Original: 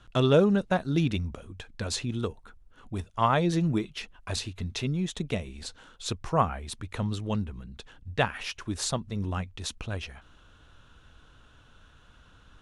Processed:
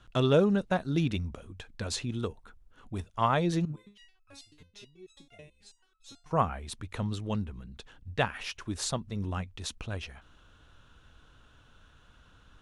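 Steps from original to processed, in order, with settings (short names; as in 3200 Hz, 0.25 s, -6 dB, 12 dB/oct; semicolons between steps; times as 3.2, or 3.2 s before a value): 3.65–6.31 stepped resonator 9.2 Hz 150–1300 Hz; gain -2.5 dB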